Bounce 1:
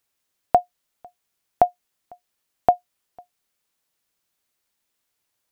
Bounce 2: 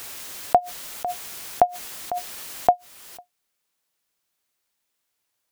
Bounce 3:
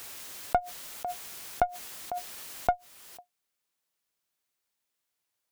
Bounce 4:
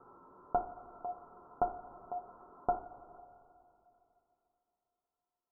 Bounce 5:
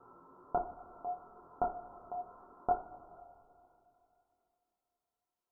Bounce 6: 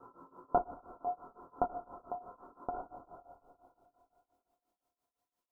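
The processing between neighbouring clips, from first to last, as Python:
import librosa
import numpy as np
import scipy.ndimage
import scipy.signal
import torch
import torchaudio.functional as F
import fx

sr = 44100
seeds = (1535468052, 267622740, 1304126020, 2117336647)

y1 = fx.low_shelf(x, sr, hz=280.0, db=-4.0)
y1 = fx.pre_swell(y1, sr, db_per_s=23.0)
y2 = fx.diode_clip(y1, sr, knee_db=-13.0)
y2 = F.gain(torch.from_numpy(y2), -6.0).numpy()
y3 = scipy.signal.sosfilt(scipy.signal.cheby1(6, 9, 1400.0, 'lowpass', fs=sr, output='sos'), y2)
y3 = fx.rev_double_slope(y3, sr, seeds[0], early_s=0.4, late_s=3.1, knee_db=-16, drr_db=1.0)
y4 = fx.chorus_voices(y3, sr, voices=2, hz=0.68, base_ms=26, depth_ms=4.1, mix_pct=40)
y4 = F.gain(torch.from_numpy(y4), 2.5).numpy()
y5 = fx.tremolo_shape(y4, sr, shape='triangle', hz=5.8, depth_pct=95)
y5 = fx.small_body(y5, sr, hz=(280.0, 520.0, 1000.0), ring_ms=45, db=6)
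y5 = F.gain(torch.from_numpy(y5), 4.5).numpy()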